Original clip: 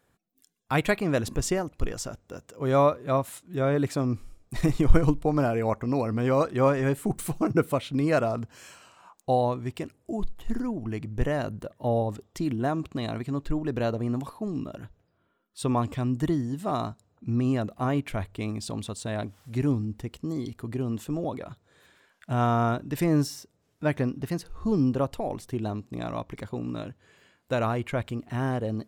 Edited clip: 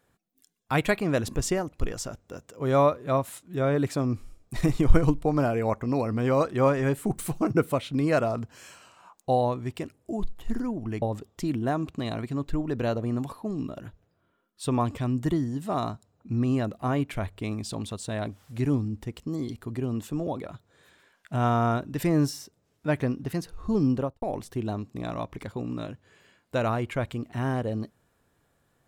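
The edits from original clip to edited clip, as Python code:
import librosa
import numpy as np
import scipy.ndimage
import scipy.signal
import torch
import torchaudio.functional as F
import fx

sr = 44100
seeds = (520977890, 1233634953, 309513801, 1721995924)

y = fx.studio_fade_out(x, sr, start_s=24.92, length_s=0.27)
y = fx.edit(y, sr, fx.cut(start_s=11.02, length_s=0.97), tone=tone)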